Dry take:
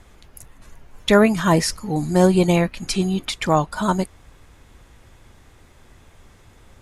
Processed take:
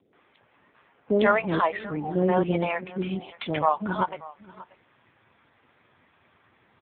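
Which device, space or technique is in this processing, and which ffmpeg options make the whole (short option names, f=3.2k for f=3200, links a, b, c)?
satellite phone: -filter_complex "[0:a]asettb=1/sr,asplit=3[a][b][c];[a]atrim=end=1.154[d];[b]atrim=start=1.15:end=1.78,asetpts=PTS-STARTPTS,afade=t=in:d=0.004:c=qsin,afade=t=out:st=0.626:d=0.004:c=qsin,equalizer=f=4k:t=o:w=0.33:g=9,equalizer=f=6.3k:t=o:w=0.33:g=6,equalizer=f=10k:t=o:w=0.33:g=-10[e];[c]atrim=start=1.776[f];[d][e]acrossfade=d=0.004:c1=hsin:c2=qsin[g];[g][f]acrossfade=d=0.004:c1=qsin:c2=hsin,acrossover=split=520[h][i];[i]adelay=130[j];[h][j]amix=inputs=2:normalize=0,asubboost=boost=4.5:cutoff=130,highpass=320,lowpass=3.2k,aecho=1:1:584:0.106" -ar 8000 -c:a libopencore_amrnb -b:a 5900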